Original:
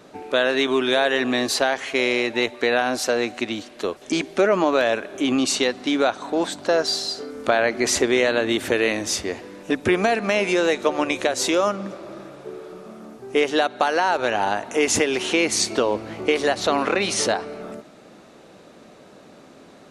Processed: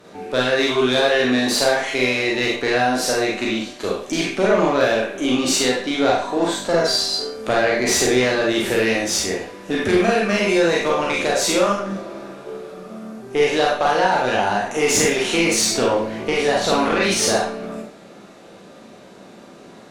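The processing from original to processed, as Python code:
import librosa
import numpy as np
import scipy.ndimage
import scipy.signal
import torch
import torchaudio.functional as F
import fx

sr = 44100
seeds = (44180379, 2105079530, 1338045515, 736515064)

y = fx.spec_trails(x, sr, decay_s=0.39)
y = fx.tube_stage(y, sr, drive_db=12.0, bias=0.4)
y = fx.rev_schroeder(y, sr, rt60_s=0.33, comb_ms=32, drr_db=-2.0)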